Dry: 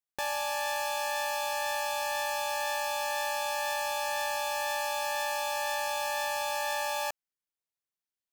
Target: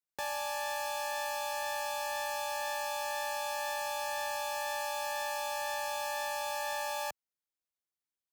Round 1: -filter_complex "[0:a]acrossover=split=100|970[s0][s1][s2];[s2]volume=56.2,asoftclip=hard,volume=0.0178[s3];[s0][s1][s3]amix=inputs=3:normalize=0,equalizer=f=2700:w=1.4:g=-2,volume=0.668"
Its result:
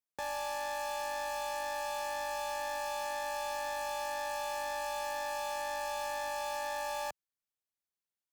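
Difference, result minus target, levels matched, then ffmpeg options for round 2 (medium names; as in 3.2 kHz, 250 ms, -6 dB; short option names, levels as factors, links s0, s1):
overload inside the chain: distortion +16 dB
-filter_complex "[0:a]acrossover=split=100|970[s0][s1][s2];[s2]volume=18.8,asoftclip=hard,volume=0.0531[s3];[s0][s1][s3]amix=inputs=3:normalize=0,equalizer=f=2700:w=1.4:g=-2,volume=0.668"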